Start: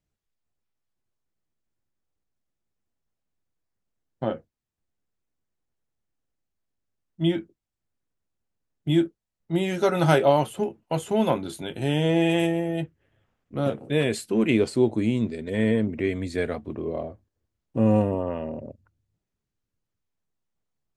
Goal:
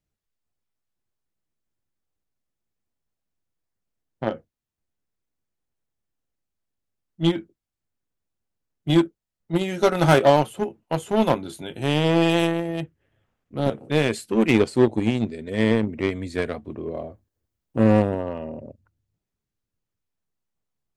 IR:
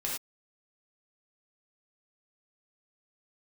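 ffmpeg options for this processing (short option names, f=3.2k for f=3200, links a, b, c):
-filter_complex "[0:a]asettb=1/sr,asplit=3[a][b][c];[a]atrim=end=16.954[d];[b]atrim=start=16.95:end=17.84,asetpts=PTS-STARTPTS,afade=t=in:d=0.004:c=qsin,afade=t=out:st=0.886:d=0.004:c=qsin,highshelf=f=9.7k:g=8[e];[c]atrim=start=17.836[f];[d][e]acrossfade=d=0.004:c1=hsin:c2=qsin[g];[g][f]acrossfade=d=0.004:c1=qsin:c2=hsin,asplit=2[h][i];[i]acrusher=bits=2:mix=0:aa=0.5,volume=-4dB[j];[h][j]amix=inputs=2:normalize=0,volume=-1dB"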